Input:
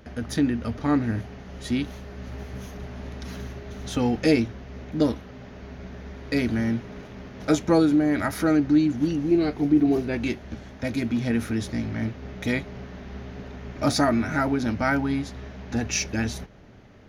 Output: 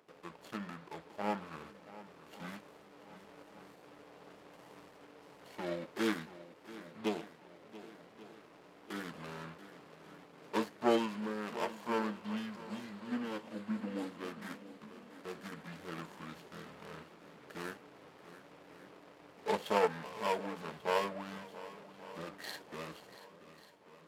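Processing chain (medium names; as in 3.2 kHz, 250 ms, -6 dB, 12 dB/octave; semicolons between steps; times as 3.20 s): median filter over 25 samples; high-pass 820 Hz 12 dB/octave; tape speed -29%; shuffle delay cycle 1140 ms, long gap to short 1.5:1, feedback 42%, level -14 dB; upward expansion 1.5:1, over -36 dBFS; trim +1 dB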